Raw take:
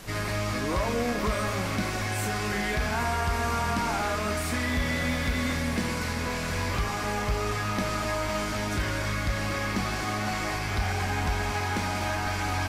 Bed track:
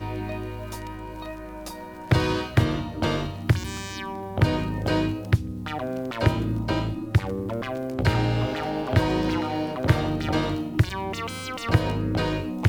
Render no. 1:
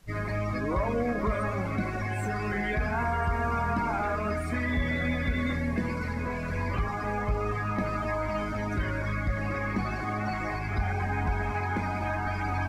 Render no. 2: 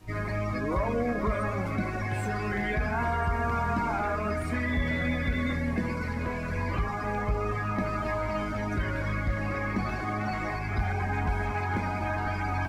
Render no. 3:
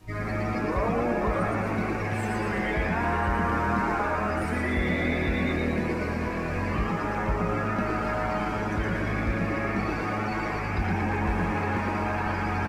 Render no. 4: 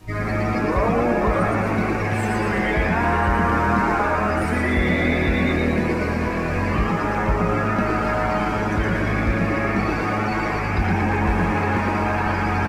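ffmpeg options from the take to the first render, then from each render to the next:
-af "afftdn=nr=18:nf=-31"
-filter_complex "[1:a]volume=-22dB[a];[0:a][a]amix=inputs=2:normalize=0"
-filter_complex "[0:a]asplit=9[a][b][c][d][e][f][g][h][i];[b]adelay=115,afreqshift=120,volume=-3.5dB[j];[c]adelay=230,afreqshift=240,volume=-8.7dB[k];[d]adelay=345,afreqshift=360,volume=-13.9dB[l];[e]adelay=460,afreqshift=480,volume=-19.1dB[m];[f]adelay=575,afreqshift=600,volume=-24.3dB[n];[g]adelay=690,afreqshift=720,volume=-29.5dB[o];[h]adelay=805,afreqshift=840,volume=-34.7dB[p];[i]adelay=920,afreqshift=960,volume=-39.8dB[q];[a][j][k][l][m][n][o][p][q]amix=inputs=9:normalize=0"
-af "volume=6.5dB"

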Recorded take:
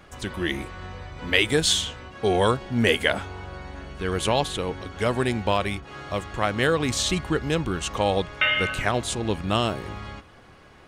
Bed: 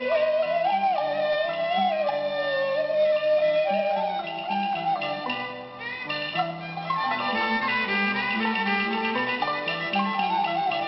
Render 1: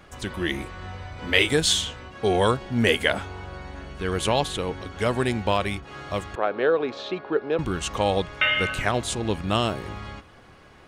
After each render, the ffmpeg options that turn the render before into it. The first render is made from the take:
-filter_complex "[0:a]asettb=1/sr,asplit=3[a][b][c];[a]atrim=end=0.834[d];[b]atrim=start=0.83:end=1.53,asetpts=PTS-STARTPTS,afade=t=in:d=0.004:c=qsin,afade=t=out:st=0.696:d=0.004:c=qsin,asplit=2[e][f];[f]adelay=31,volume=-6dB[g];[e][g]amix=inputs=2:normalize=0,atrim=end_sample=30870[h];[c]atrim=start=1.526[i];[d][h]acrossfade=d=0.004:c1=hsin:c2=qsin[j];[j][i]acrossfade=d=0.004:c1=qsin:c2=hsin,asettb=1/sr,asplit=3[k][l][m];[k]atrim=end=6.354[n];[l]atrim=start=6.35:end=7.59,asetpts=PTS-STARTPTS,afade=t=in:d=0.004:c=qsin,afade=t=out:st=1.236:d=0.004:c=qsin,highpass=360,equalizer=f=420:t=q:w=4:g=7,equalizer=f=590:t=q:w=4:g=3,equalizer=f=1.1k:t=q:w=4:g=-3,equalizer=f=2k:t=q:w=4:g=-10,equalizer=f=3k:t=q:w=4:g=-10,lowpass=f=3.2k:w=0.5412,lowpass=f=3.2k:w=1.3066[o];[m]atrim=start=7.586[p];[n][o]acrossfade=d=0.004:c1=hsin:c2=qsin[q];[q][p]acrossfade=d=0.004:c1=qsin:c2=hsin"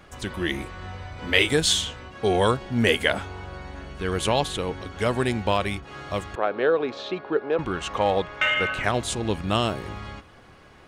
-filter_complex "[0:a]asettb=1/sr,asplit=3[a][b][c];[a]atrim=end=7.414[d];[b]atrim=start=7.41:end=8.84,asetpts=PTS-STARTPTS,afade=t=in:d=0.004:c=qsin,afade=t=out:st=1.426:d=0.004:c=qsin,asplit=2[e][f];[f]highpass=f=720:p=1,volume=10dB,asoftclip=type=tanh:threshold=-7.5dB[g];[e][g]amix=inputs=2:normalize=0,lowpass=f=1.5k:p=1,volume=-6dB[h];[c]atrim=start=8.836[i];[d][h]acrossfade=d=0.004:c1=hsin:c2=qsin[j];[j][i]acrossfade=d=0.004:c1=qsin:c2=hsin"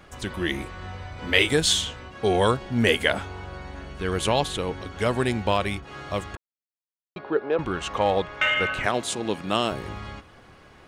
-filter_complex "[0:a]asettb=1/sr,asplit=3[a][b][c];[a]atrim=end=8.864[d];[b]atrim=start=8.86:end=9.72,asetpts=PTS-STARTPTS,afade=t=in:d=0.004:c=qsin,afade=t=out:st=0.856:d=0.004:c=qsin,highpass=190[e];[c]atrim=start=9.716[f];[d][e]acrossfade=d=0.004:c1=hsin:c2=qsin[g];[g][f]acrossfade=d=0.004:c1=qsin:c2=hsin,asplit=3[h][i][j];[h]atrim=end=6.37,asetpts=PTS-STARTPTS,afade=t=out:st=6.366:d=0.004:c=hsin[k];[i]atrim=start=6.37:end=7.16,asetpts=PTS-STARTPTS,volume=0[l];[j]atrim=start=7.16,asetpts=PTS-STARTPTS,afade=t=in:d=0.004:c=hsin[m];[k][l][m]concat=n=3:v=0:a=1"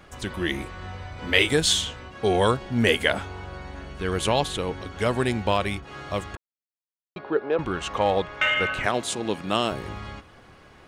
-af anull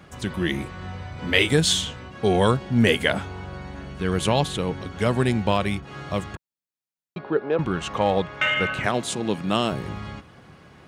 -af "highpass=52,equalizer=f=160:w=1.2:g=8"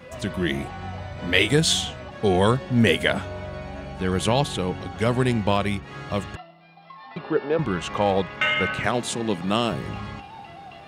-filter_complex "[1:a]volume=-17.5dB[a];[0:a][a]amix=inputs=2:normalize=0"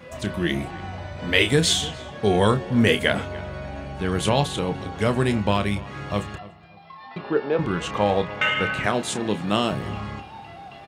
-filter_complex "[0:a]asplit=2[a][b];[b]adelay=29,volume=-10dB[c];[a][c]amix=inputs=2:normalize=0,asplit=2[d][e];[e]adelay=291,lowpass=f=2.3k:p=1,volume=-18dB,asplit=2[f][g];[g]adelay=291,lowpass=f=2.3k:p=1,volume=0.31,asplit=2[h][i];[i]adelay=291,lowpass=f=2.3k:p=1,volume=0.31[j];[d][f][h][j]amix=inputs=4:normalize=0"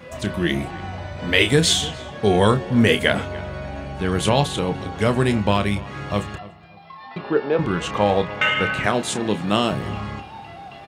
-af "volume=2.5dB,alimiter=limit=-2dB:level=0:latency=1"

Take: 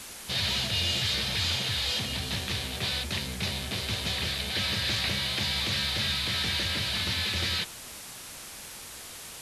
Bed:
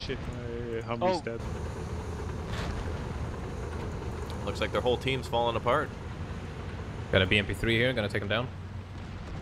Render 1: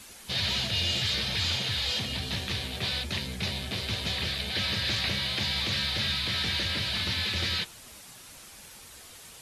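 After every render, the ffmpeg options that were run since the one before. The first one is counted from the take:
-af "afftdn=nr=7:nf=-43"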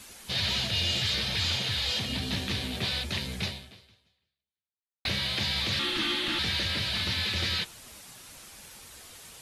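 -filter_complex "[0:a]asettb=1/sr,asplit=3[a][b][c];[a]atrim=end=2.094[d];[b]atrim=start=2.09:end=2.85,asetpts=PTS-STARTPTS,afade=t=in:d=0.004:c=qsin,afade=t=out:st=0.756:d=0.004:c=qsin,equalizer=f=250:w=1.9:g=7.5[e];[c]atrim=start=2.846[f];[d][e]acrossfade=d=0.004:c1=hsin:c2=qsin[g];[g][f]acrossfade=d=0.004:c1=qsin:c2=hsin,asettb=1/sr,asplit=3[h][i][j];[h]atrim=end=5.794[k];[i]atrim=start=5.79:end=6.39,asetpts=PTS-STARTPTS,afade=t=in:d=0.004:c=qsin,afade=t=out:st=0.596:d=0.004:c=qsin,afreqshift=-430[l];[j]atrim=start=6.386[m];[k][l]acrossfade=d=0.004:c1=hsin:c2=qsin[n];[n][m]acrossfade=d=0.004:c1=qsin:c2=hsin,asplit=2[o][p];[o]atrim=end=5.05,asetpts=PTS-STARTPTS,afade=t=out:st=3.44:d=1.61:c=exp[q];[p]atrim=start=5.05,asetpts=PTS-STARTPTS,afade=t=in:d=0.004:c=hsin[r];[q][r]concat=n=2:v=0:a=1"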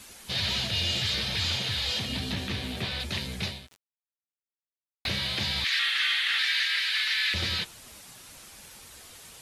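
-filter_complex "[0:a]asettb=1/sr,asplit=3[a][b][c];[a]atrim=end=2.324[d];[b]atrim=start=2.32:end=3,asetpts=PTS-STARTPTS,afade=t=in:d=0.004:c=qsin,afade=t=out:st=0.676:d=0.004:c=qsin,acrossover=split=3200[e][f];[f]acompressor=threshold=-38dB:ratio=4:attack=1:release=60[g];[e][g]amix=inputs=2:normalize=0[h];[c]atrim=start=2.996[i];[d][h]acrossfade=d=0.004:c1=hsin:c2=qsin[j];[j][i]acrossfade=d=0.004:c1=qsin:c2=hsin,asplit=3[k][l][m];[k]afade=t=out:st=3.66:d=0.02[n];[l]aeval=exprs='val(0)*gte(abs(val(0)),0.00794)':c=same,afade=t=in:st=3.66:d=0.02,afade=t=out:st=5.06:d=0.02[o];[m]afade=t=in:st=5.06:d=0.02[p];[n][o][p]amix=inputs=3:normalize=0,asettb=1/sr,asplit=3[q][r][s];[q]atrim=end=5.644[t];[r]atrim=start=5.64:end=7.34,asetpts=PTS-STARTPTS,afade=t=in:d=0.004:c=qsin,afade=t=out:st=1.696:d=0.004:c=qsin,highpass=f=1.8k:t=q:w=2.8[u];[s]atrim=start=7.336[v];[t][u]acrossfade=d=0.004:c1=hsin:c2=qsin[w];[w][v]acrossfade=d=0.004:c1=qsin:c2=hsin"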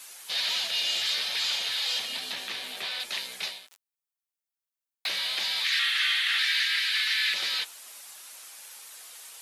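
-af "highpass=700,highshelf=f=8.5k:g=7"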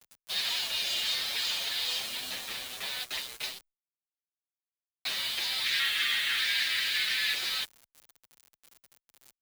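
-filter_complex "[0:a]acrusher=bits=5:mix=0:aa=0.000001,asplit=2[a][b];[b]adelay=7.2,afreqshift=2.5[c];[a][c]amix=inputs=2:normalize=1"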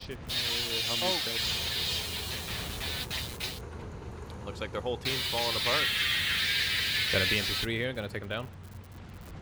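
-filter_complex "[1:a]volume=-6dB[a];[0:a][a]amix=inputs=2:normalize=0"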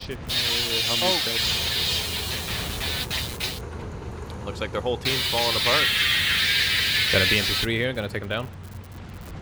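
-af "volume=7dB"

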